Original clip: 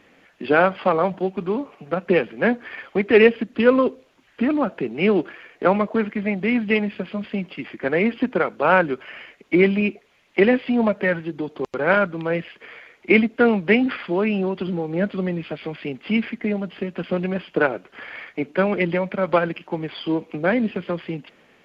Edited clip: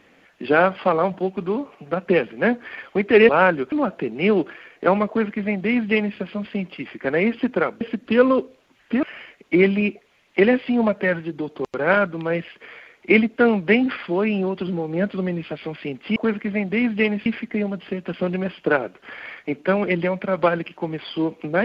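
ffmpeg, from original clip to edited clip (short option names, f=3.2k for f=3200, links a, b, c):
-filter_complex "[0:a]asplit=7[a][b][c][d][e][f][g];[a]atrim=end=3.292[h];[b]atrim=start=8.598:end=9.032[i];[c]atrim=start=4.508:end=8.602[j];[d]atrim=start=3.288:end=4.512[k];[e]atrim=start=9.028:end=16.162[l];[f]atrim=start=5.868:end=6.972[m];[g]atrim=start=16.158[n];[h][i]acrossfade=d=0.004:c1=hsin:c2=hsin[o];[o][j]acrossfade=d=0.004:c1=hsin:c2=hsin[p];[p][k]acrossfade=d=0.004:c1=hsin:c2=hsin[q];[q][l]acrossfade=d=0.004:c1=hsin:c2=hsin[r];[r][m]acrossfade=d=0.004:c1=hsin:c2=hsin[s];[s][n]acrossfade=d=0.004:c1=hsin:c2=hsin"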